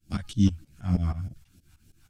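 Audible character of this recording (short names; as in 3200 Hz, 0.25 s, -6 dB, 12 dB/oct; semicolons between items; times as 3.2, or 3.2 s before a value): phasing stages 2, 3.3 Hz, lowest notch 380–1100 Hz; tremolo saw up 6.3 Hz, depth 95%; a shimmering, thickened sound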